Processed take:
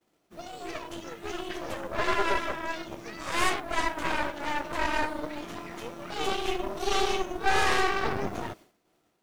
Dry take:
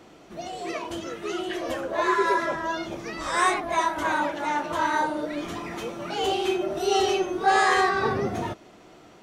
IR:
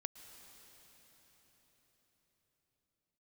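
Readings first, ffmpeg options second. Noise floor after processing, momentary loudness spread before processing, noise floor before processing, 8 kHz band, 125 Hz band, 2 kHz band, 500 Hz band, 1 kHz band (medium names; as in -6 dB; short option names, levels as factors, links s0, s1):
-72 dBFS, 12 LU, -51 dBFS, -2.5 dB, -2.5 dB, -3.0 dB, -6.0 dB, -6.0 dB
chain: -af "acrusher=bits=8:mix=0:aa=0.000001,agate=range=0.0224:threshold=0.01:ratio=3:detection=peak,aeval=exprs='0.355*(cos(1*acos(clip(val(0)/0.355,-1,1)))-cos(1*PI/2))+0.126*(cos(4*acos(clip(val(0)/0.355,-1,1)))-cos(4*PI/2))+0.0316*(cos(8*acos(clip(val(0)/0.355,-1,1)))-cos(8*PI/2))':c=same,volume=0.447"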